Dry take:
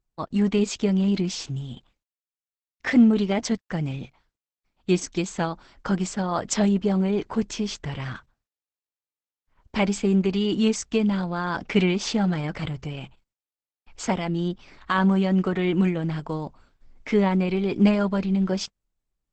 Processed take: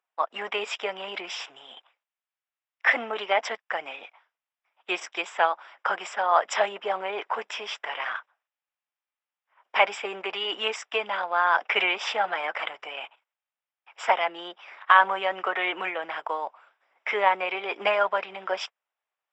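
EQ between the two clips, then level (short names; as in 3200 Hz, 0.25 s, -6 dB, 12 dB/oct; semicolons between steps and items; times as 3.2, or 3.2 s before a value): polynomial smoothing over 25 samples; HPF 650 Hz 24 dB/oct; +8.0 dB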